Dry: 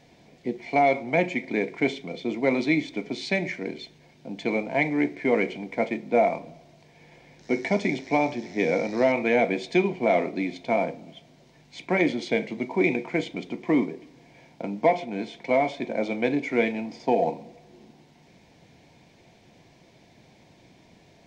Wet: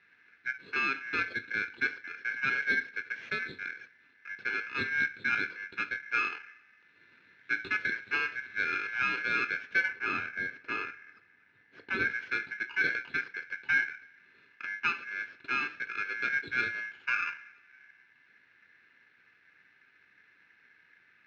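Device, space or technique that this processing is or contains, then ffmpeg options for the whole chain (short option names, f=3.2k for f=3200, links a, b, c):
ring modulator pedal into a guitar cabinet: -filter_complex "[0:a]aeval=exprs='val(0)*sgn(sin(2*PI*1900*n/s))':c=same,highpass=100,equalizer=f=100:t=q:w=4:g=4,equalizer=f=570:t=q:w=4:g=-6,equalizer=f=1.1k:t=q:w=4:g=-10,equalizer=f=1.6k:t=q:w=4:g=8,lowpass=f=3.4k:w=0.5412,lowpass=f=3.4k:w=1.3066,asettb=1/sr,asplit=3[a][b][c];[a]atrim=end=9.884[d];[b]atrim=start=9.88:end=12.11,asetpts=PTS-STARTPTS,afade=t=in:d=0.004:c=qsin,afade=t=out:st=2.226:d=0.004:c=qsin,tiltshelf=f=1.2k:g=4.5[e];[c]atrim=start=12.106[f];[d][e]acrossfade=d=0.004:c1=hsin:c2=qsin[g];[g][f]acrossfade=d=0.004:c1=qsin:c2=hsin,volume=-9dB"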